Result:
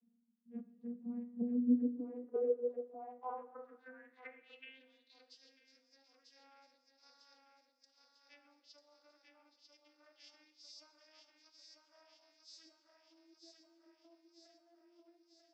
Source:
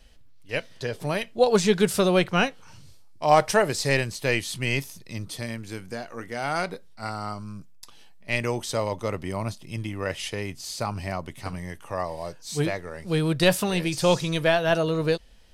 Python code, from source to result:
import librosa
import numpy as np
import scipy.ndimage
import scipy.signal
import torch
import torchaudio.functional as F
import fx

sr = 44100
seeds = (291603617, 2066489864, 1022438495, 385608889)

y = fx.vocoder_glide(x, sr, note=58, semitones=7)
y = fx.env_lowpass_down(y, sr, base_hz=370.0, full_db=-21.0)
y = fx.echo_feedback(y, sr, ms=944, feedback_pct=59, wet_db=-4.5)
y = fx.filter_sweep_bandpass(y, sr, from_hz=210.0, to_hz=5100.0, start_s=1.5, end_s=5.38, q=7.8)
y = fx.rev_schroeder(y, sr, rt60_s=1.2, comb_ms=29, drr_db=12.0)
y = F.gain(torch.from_numpy(y), -2.0).numpy()